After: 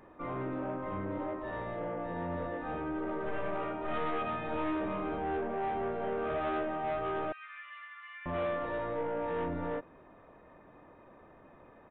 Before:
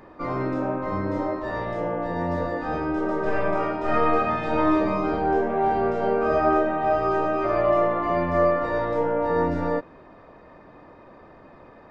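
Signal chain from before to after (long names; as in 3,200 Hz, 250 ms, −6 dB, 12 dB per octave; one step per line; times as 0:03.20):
0:07.32–0:08.26: Butterworth high-pass 1,600 Hz 36 dB per octave
soft clipping −20.5 dBFS, distortion −12 dB
downsampling to 8,000 Hz
level −8.5 dB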